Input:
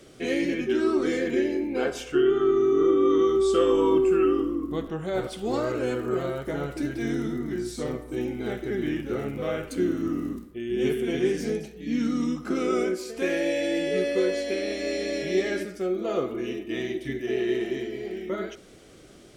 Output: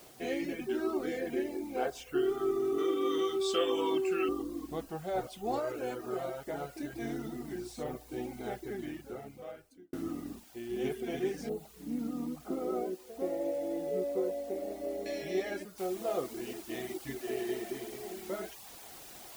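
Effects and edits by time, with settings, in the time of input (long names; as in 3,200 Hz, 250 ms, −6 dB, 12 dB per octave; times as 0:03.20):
0:00.60–0:01.89: high-shelf EQ 6,900 Hz −8 dB
0:02.78–0:04.29: meter weighting curve D
0:05.59–0:06.93: low-shelf EQ 170 Hz −6.5 dB
0:08.51–0:09.93: fade out
0:11.49–0:15.06: Savitzky-Golay smoothing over 65 samples
0:15.78: noise floor change −48 dB −40 dB
whole clip: reverb reduction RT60 0.58 s; parametric band 740 Hz +11.5 dB 0.54 octaves; level −9 dB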